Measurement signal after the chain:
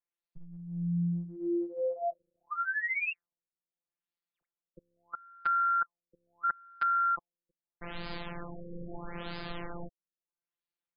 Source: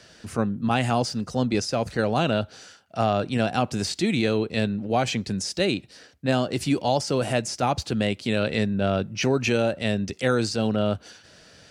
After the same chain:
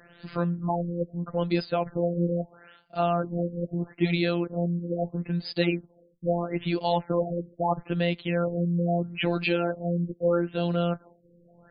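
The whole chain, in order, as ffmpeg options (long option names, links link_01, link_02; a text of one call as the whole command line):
ffmpeg -i in.wav -af "afftfilt=real='hypot(re,im)*cos(PI*b)':imag='0':win_size=1024:overlap=0.75,acontrast=78,afftfilt=real='re*lt(b*sr/1024,530*pow(5100/530,0.5+0.5*sin(2*PI*0.77*pts/sr)))':imag='im*lt(b*sr/1024,530*pow(5100/530,0.5+0.5*sin(2*PI*0.77*pts/sr)))':win_size=1024:overlap=0.75,volume=-4.5dB" out.wav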